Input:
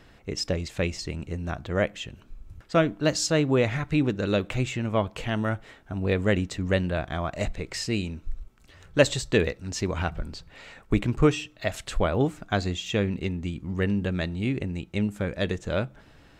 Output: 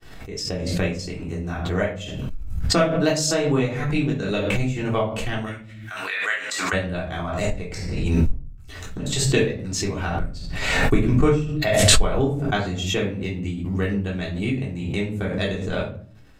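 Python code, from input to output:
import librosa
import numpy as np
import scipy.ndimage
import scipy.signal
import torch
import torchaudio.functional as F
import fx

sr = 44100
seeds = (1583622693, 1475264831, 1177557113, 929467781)

y = fx.fade_in_head(x, sr, length_s=0.83)
y = fx.high_shelf(y, sr, hz=7000.0, db=10.5)
y = fx.transient(y, sr, attack_db=7, sustain_db=-10)
y = fx.highpass_res(y, sr, hz=fx.line((5.45, 2500.0), (6.72, 1100.0)), q=2.1, at=(5.45, 6.72), fade=0.02)
y = fx.gate_flip(y, sr, shuts_db=-15.0, range_db=-38, at=(7.59, 9.06), fade=0.02)
y = fx.room_shoebox(y, sr, seeds[0], volume_m3=370.0, walls='furnished', distance_m=3.5)
y = fx.pre_swell(y, sr, db_per_s=34.0)
y = y * librosa.db_to_amplitude(-8.5)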